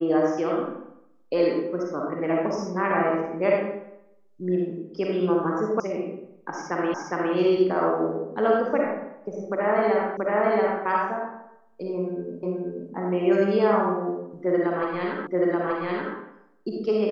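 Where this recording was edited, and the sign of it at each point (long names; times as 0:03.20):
0:05.80: cut off before it has died away
0:06.94: the same again, the last 0.41 s
0:10.17: the same again, the last 0.68 s
0:12.43: the same again, the last 0.48 s
0:15.27: the same again, the last 0.88 s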